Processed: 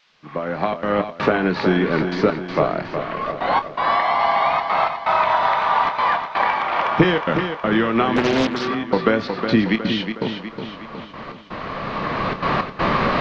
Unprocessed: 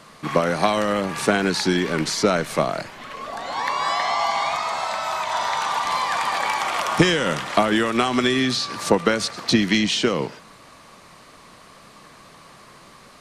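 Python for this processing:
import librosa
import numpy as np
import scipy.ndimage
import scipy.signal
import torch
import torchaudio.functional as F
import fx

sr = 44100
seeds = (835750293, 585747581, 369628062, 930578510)

y = fx.fade_in_head(x, sr, length_s=1.65)
y = fx.recorder_agc(y, sr, target_db=-9.0, rise_db_per_s=11.0, max_gain_db=30)
y = fx.step_gate(y, sr, bpm=163, pattern='xxxxxxxx.xx..x', floor_db=-60.0, edge_ms=4.5)
y = fx.dmg_noise_colour(y, sr, seeds[0], colour='violet', level_db=-35.0)
y = scipy.ndimage.gaussian_filter1d(y, 2.8, mode='constant')
y = fx.doubler(y, sr, ms=27.0, db=-11.5)
y = fx.echo_feedback(y, sr, ms=365, feedback_pct=50, wet_db=-7.5)
y = fx.doppler_dist(y, sr, depth_ms=0.73, at=(8.16, 8.68))
y = y * 10.0 ** (1.5 / 20.0)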